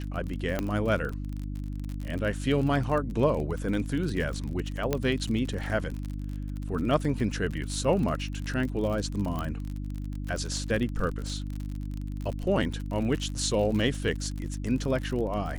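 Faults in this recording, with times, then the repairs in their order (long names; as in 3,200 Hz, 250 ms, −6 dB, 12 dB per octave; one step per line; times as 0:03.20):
surface crackle 45 per second −32 dBFS
mains hum 50 Hz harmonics 6 −34 dBFS
0:00.59: click −14 dBFS
0:04.93: click −12 dBFS
0:09.39: click −20 dBFS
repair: click removal
hum removal 50 Hz, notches 6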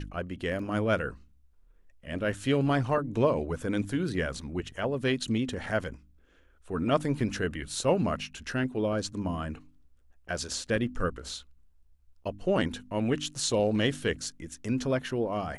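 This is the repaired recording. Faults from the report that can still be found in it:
0:00.59: click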